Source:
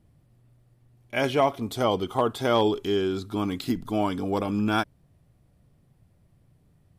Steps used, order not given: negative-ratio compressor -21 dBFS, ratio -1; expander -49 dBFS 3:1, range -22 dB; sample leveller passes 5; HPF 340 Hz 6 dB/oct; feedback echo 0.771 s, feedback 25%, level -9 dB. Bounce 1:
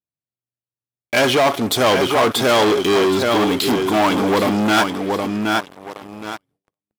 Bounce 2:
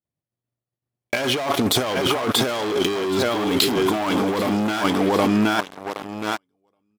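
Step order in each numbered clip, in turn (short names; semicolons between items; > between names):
feedback echo > negative-ratio compressor > sample leveller > HPF > expander; expander > feedback echo > sample leveller > HPF > negative-ratio compressor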